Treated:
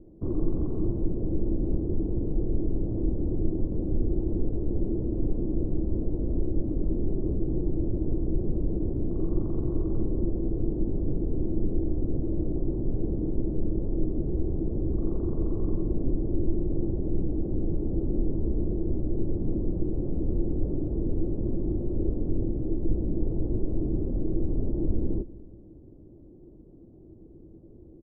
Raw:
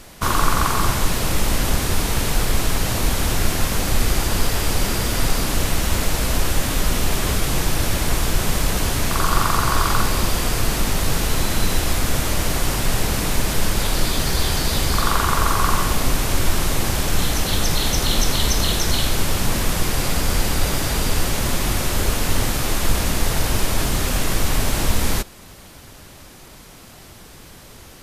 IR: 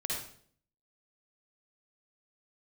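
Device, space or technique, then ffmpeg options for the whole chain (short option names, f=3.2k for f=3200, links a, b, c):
under water: -filter_complex "[0:a]lowpass=f=460:w=0.5412,lowpass=f=460:w=1.3066,equalizer=f=330:t=o:w=0.37:g=12,asettb=1/sr,asplit=3[a][b][c];[a]atrim=end=22.304[d];[b]atrim=start=22.3:end=23.16,asetpts=PTS-STARTPTS,afade=t=in:d=0.004:c=qsin,afade=t=out:st=0.856:d=0.004:c=qsin,lowpass=f=1.2k:p=1[e];[c]atrim=start=23.156[f];[d][e]acrossfade=d=0.004:c1=hsin:c2=qsin[g];[g][f]acrossfade=d=0.004:c1=qsin:c2=hsin,asplit=2[h][i];[i]adelay=192,lowpass=f=1.2k:p=1,volume=-18.5dB,asplit=2[j][k];[k]adelay=192,lowpass=f=1.2k:p=1,volume=0.52,asplit=2[l][m];[m]adelay=192,lowpass=f=1.2k:p=1,volume=0.52,asplit=2[n][o];[o]adelay=192,lowpass=f=1.2k:p=1,volume=0.52[p];[h][j][l][n][p]amix=inputs=5:normalize=0,volume=-7dB"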